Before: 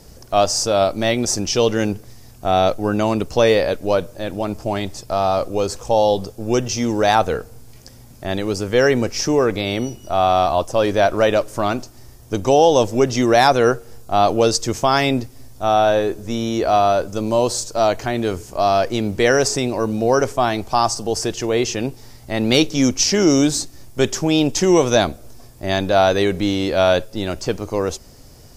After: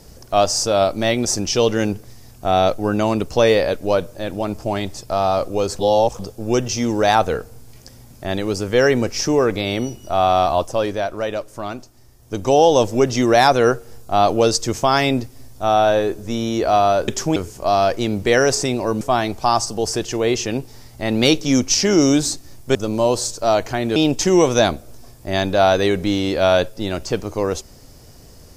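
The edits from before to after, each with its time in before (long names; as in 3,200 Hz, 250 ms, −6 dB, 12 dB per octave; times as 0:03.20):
0:05.79–0:06.19: reverse
0:10.60–0:12.59: duck −8 dB, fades 0.45 s
0:17.08–0:18.29: swap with 0:24.04–0:24.32
0:19.94–0:20.30: remove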